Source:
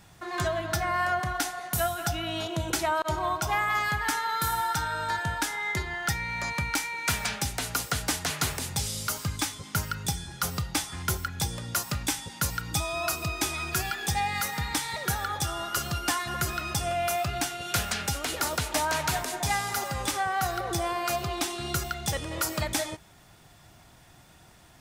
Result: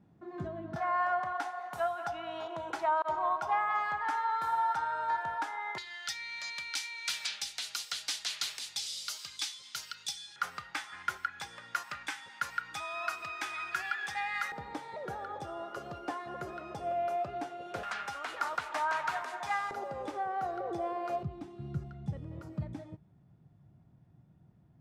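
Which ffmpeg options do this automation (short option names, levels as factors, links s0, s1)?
-af "asetnsamples=n=441:p=0,asendcmd='0.76 bandpass f 910;5.78 bandpass f 4000;10.36 bandpass f 1600;14.52 bandpass f 510;17.83 bandpass f 1200;19.71 bandpass f 500;21.23 bandpass f 150',bandpass=f=240:t=q:w=1.7:csg=0"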